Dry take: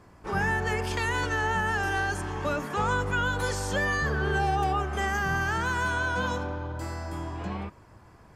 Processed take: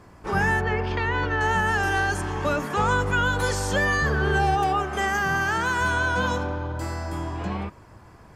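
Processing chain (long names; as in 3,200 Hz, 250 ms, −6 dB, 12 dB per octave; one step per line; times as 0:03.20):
0:00.61–0:01.41: high-frequency loss of the air 260 metres
0:04.55–0:05.81: high-pass filter 160 Hz 6 dB per octave
level +4.5 dB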